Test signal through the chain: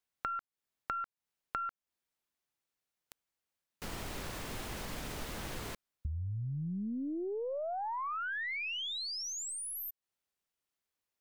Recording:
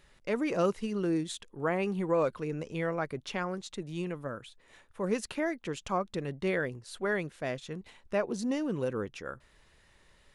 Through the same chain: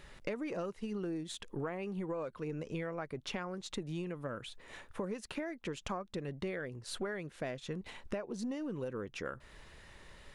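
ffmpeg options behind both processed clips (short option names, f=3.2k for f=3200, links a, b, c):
-af "acompressor=threshold=-43dB:ratio=20,aeval=exprs='0.0501*(cos(1*acos(clip(val(0)/0.0501,-1,1)))-cos(1*PI/2))+0.00141*(cos(6*acos(clip(val(0)/0.0501,-1,1)))-cos(6*PI/2))':c=same,highshelf=f=4.2k:g=-4.5,volume=8dB"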